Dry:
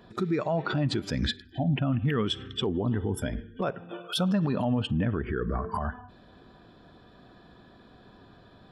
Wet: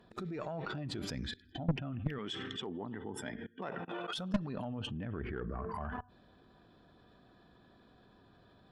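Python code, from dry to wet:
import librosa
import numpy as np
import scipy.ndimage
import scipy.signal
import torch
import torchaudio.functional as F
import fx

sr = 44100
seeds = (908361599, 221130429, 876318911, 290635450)

y = fx.level_steps(x, sr, step_db=23)
y = fx.tube_stage(y, sr, drive_db=33.0, bias=0.5)
y = fx.cabinet(y, sr, low_hz=180.0, low_slope=12, high_hz=9100.0, hz=(550.0, 860.0, 1900.0), db=(-4, 6, 8), at=(2.18, 4.18))
y = y * librosa.db_to_amplitude(8.5)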